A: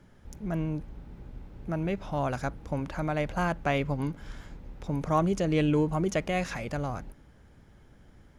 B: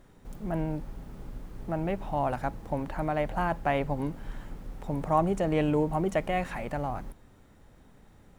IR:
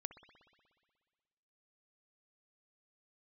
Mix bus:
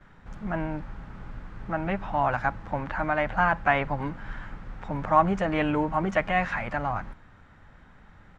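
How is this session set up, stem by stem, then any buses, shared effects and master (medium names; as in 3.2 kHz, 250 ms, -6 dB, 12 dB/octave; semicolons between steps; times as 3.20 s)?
-6.5 dB, 0.00 s, no send, none
+2.5 dB, 9.8 ms, no send, none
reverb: none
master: FFT filter 170 Hz 0 dB, 280 Hz -4 dB, 410 Hz -6 dB, 1.5 kHz +9 dB, 7.4 kHz -10 dB, 12 kHz -27 dB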